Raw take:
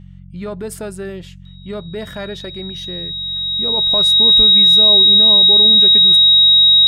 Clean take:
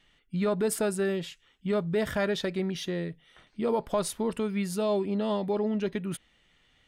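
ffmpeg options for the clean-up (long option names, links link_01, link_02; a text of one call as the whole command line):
ffmpeg -i in.wav -filter_complex "[0:a]bandreject=frequency=45.7:width_type=h:width=4,bandreject=frequency=91.4:width_type=h:width=4,bandreject=frequency=137.1:width_type=h:width=4,bandreject=frequency=182.8:width_type=h:width=4,bandreject=frequency=3800:width=30,asplit=3[link_01][link_02][link_03];[link_01]afade=type=out:start_time=4.36:duration=0.02[link_04];[link_02]highpass=frequency=140:width=0.5412,highpass=frequency=140:width=1.3066,afade=type=in:start_time=4.36:duration=0.02,afade=type=out:start_time=4.48:duration=0.02[link_05];[link_03]afade=type=in:start_time=4.48:duration=0.02[link_06];[link_04][link_05][link_06]amix=inputs=3:normalize=0,asetnsamples=nb_out_samples=441:pad=0,asendcmd='3.77 volume volume -3.5dB',volume=0dB" out.wav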